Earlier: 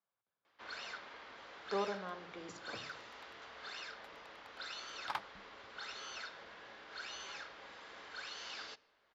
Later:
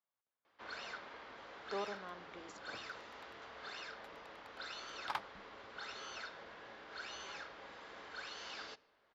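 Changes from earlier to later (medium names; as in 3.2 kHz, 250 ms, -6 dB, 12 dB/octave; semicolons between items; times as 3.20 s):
speech: send -10.5 dB; first sound: add tilt shelf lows +3 dB, about 1.4 kHz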